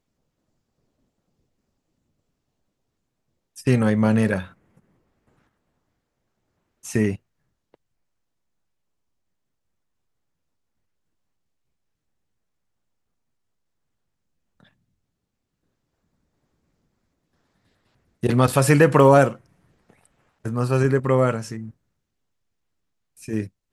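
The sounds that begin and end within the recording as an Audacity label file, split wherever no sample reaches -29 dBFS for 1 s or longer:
3.580000	4.430000	sound
6.850000	7.160000	sound
18.230000	19.330000	sound
20.450000	21.660000	sound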